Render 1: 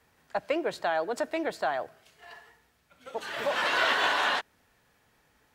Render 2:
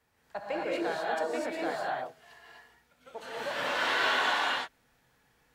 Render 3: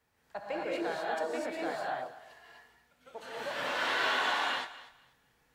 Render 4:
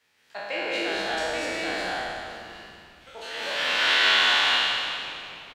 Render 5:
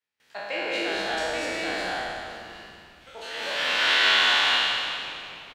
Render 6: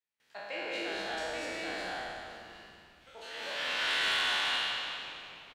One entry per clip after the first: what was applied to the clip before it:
gated-style reverb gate 280 ms rising, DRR -5 dB; trim -8 dB
thinning echo 243 ms, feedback 21%, level -16 dB; trim -2.5 dB
spectral sustain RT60 2.04 s; frequency weighting D; frequency-shifting echo 192 ms, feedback 65%, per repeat -140 Hz, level -15 dB
gate with hold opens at -54 dBFS
saturation -15 dBFS, distortion -18 dB; trim -8 dB

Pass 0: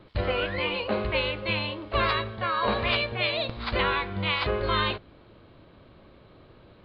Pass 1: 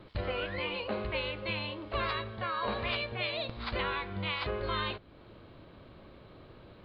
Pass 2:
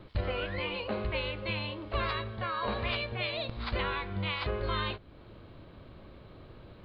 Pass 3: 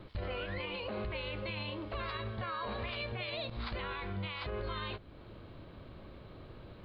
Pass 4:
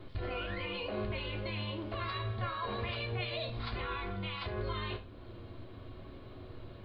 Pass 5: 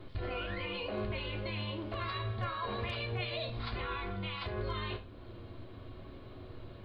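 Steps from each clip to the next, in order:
compression 1.5:1, threshold -44 dBFS, peak gain reduction 8.5 dB
bass shelf 120 Hz +6.5 dB; endings held to a fixed fall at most 310 dB/s
peak limiter -30 dBFS, peak gain reduction 9.5 dB
flange 0.81 Hz, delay 7.2 ms, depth 1.8 ms, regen -69%; reverberation RT60 0.50 s, pre-delay 3 ms, DRR 2.5 dB; trim +3 dB
hard clipper -26.5 dBFS, distortion -41 dB

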